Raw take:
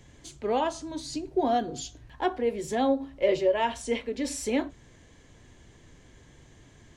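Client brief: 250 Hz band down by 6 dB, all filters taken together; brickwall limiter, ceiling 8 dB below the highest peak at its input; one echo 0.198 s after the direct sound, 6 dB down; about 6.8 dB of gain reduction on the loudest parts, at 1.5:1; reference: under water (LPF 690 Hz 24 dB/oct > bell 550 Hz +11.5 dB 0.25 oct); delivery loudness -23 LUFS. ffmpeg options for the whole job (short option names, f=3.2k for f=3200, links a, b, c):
-af "equalizer=f=250:t=o:g=-8,acompressor=threshold=-39dB:ratio=1.5,alimiter=level_in=4.5dB:limit=-24dB:level=0:latency=1,volume=-4.5dB,lowpass=f=690:w=0.5412,lowpass=f=690:w=1.3066,equalizer=f=550:t=o:w=0.25:g=11.5,aecho=1:1:198:0.501,volume=11.5dB"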